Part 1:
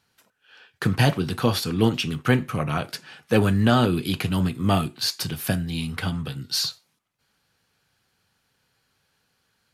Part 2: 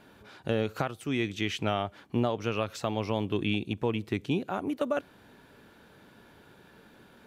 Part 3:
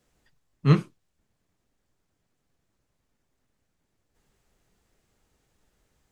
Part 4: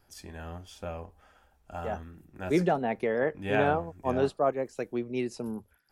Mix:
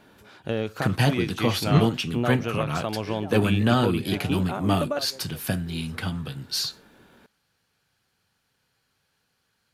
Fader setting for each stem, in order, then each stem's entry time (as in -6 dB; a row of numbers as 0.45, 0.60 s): -2.5, +1.0, -1.5, -15.0 dB; 0.00, 0.00, 1.05, 0.55 s